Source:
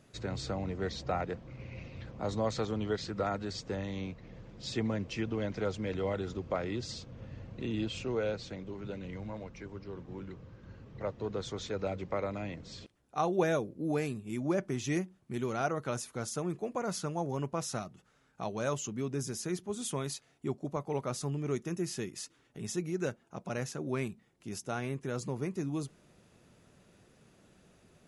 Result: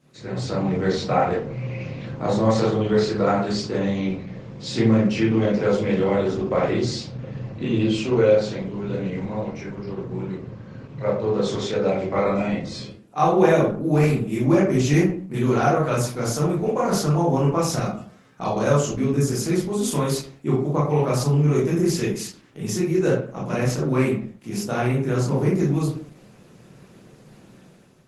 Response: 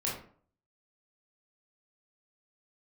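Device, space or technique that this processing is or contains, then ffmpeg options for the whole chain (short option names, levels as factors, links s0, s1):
far-field microphone of a smart speaker: -filter_complex "[0:a]asplit=3[s0][s1][s2];[s0]afade=t=out:st=7:d=0.02[s3];[s1]lowpass=8000,afade=t=in:st=7:d=0.02,afade=t=out:st=7.84:d=0.02[s4];[s2]afade=t=in:st=7.84:d=0.02[s5];[s3][s4][s5]amix=inputs=3:normalize=0[s6];[1:a]atrim=start_sample=2205[s7];[s6][s7]afir=irnorm=-1:irlink=0,highpass=f=110:w=0.5412,highpass=f=110:w=1.3066,dynaudnorm=f=190:g=5:m=2.66" -ar 48000 -c:a libopus -b:a 16k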